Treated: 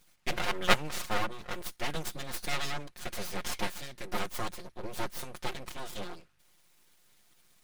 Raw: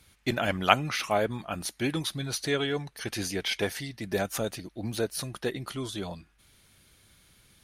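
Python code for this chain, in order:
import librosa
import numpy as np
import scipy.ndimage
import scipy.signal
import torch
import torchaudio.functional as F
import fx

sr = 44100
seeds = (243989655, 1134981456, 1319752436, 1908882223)

y = fx.lower_of_two(x, sr, delay_ms=5.6)
y = np.abs(y)
y = y * 10.0 ** (-1.0 / 20.0)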